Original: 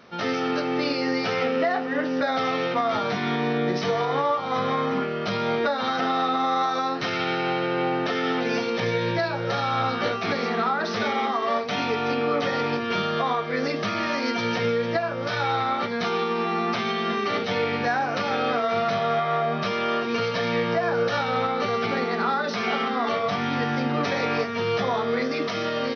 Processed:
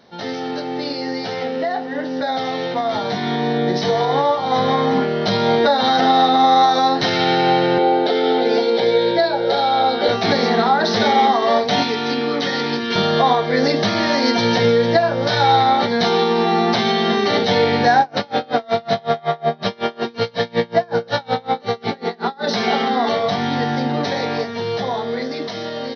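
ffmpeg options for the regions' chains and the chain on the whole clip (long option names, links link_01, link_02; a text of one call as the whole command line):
ffmpeg -i in.wav -filter_complex "[0:a]asettb=1/sr,asplit=3[link_01][link_02][link_03];[link_01]atrim=end=7.784[link_04];[link_02]atrim=start=7.78:end=10.09,asetpts=PTS-STARTPTS,afade=type=in:duration=0.004:curve=qsin,afade=type=out:start_time=2.306:duration=0.004:curve=qsin,highpass=310,equalizer=frequency=430:width_type=q:width=4:gain=4,equalizer=frequency=1100:width_type=q:width=4:gain=-9,equalizer=frequency=2700:width_type=q:width=4:gain=-7,lowpass=frequency=4400:width=0.5412,lowpass=frequency=4400:width=1.3066,bandreject=frequency=1800:width=6.9[link_05];[link_03]atrim=start=10.086[link_06];[link_04][link_05]acrossfade=duration=0.004:curve1=hsin:curve2=qsin[link_07];[link_07][link_06]acrossfade=duration=0.004:curve1=qsin:curve2=hsin,asettb=1/sr,asplit=3[link_08][link_09][link_10];[link_08]atrim=end=11.834[link_11];[link_09]atrim=start=11.83:end=12.96,asetpts=PTS-STARTPTS,afade=type=in:duration=0.004:curve=qsin,afade=type=out:start_time=1.126:duration=0.004:curve=qsin,highpass=200,equalizer=frequency=650:width_type=o:width=1.2:gain=-11[link_12];[link_10]atrim=start=12.956[link_13];[link_11][link_12]acrossfade=duration=0.004:curve1=hsin:curve2=qsin[link_14];[link_14][link_13]acrossfade=duration=0.004:curve1=qsin:curve2=hsin,asettb=1/sr,asplit=3[link_15][link_16][link_17];[link_15]atrim=end=18.004[link_18];[link_16]atrim=start=18:end=22.47,asetpts=PTS-STARTPTS,afade=type=in:duration=0.004:curve=qsin,afade=type=out:start_time=4.466:duration=0.004:curve=qsin,acrossover=split=5600[link_19][link_20];[link_20]acompressor=threshold=-54dB:ratio=4:attack=1:release=60[link_21];[link_19][link_21]amix=inputs=2:normalize=0,aeval=exprs='val(0)*pow(10,-30*(0.5-0.5*cos(2*PI*5.4*n/s))/20)':channel_layout=same[link_22];[link_17]atrim=start=22.466[link_23];[link_18][link_22]acrossfade=duration=0.004:curve1=hsin:curve2=qsin[link_24];[link_24][link_23]acrossfade=duration=0.004:curve1=qsin:curve2=hsin,equalizer=frequency=800:width_type=o:width=0.33:gain=5,equalizer=frequency=1250:width_type=o:width=0.33:gain=-11,equalizer=frequency=2500:width_type=o:width=0.33:gain=-9,equalizer=frequency=4000:width_type=o:width=0.33:gain=6,dynaudnorm=framelen=850:gausssize=9:maxgain=10.5dB" out.wav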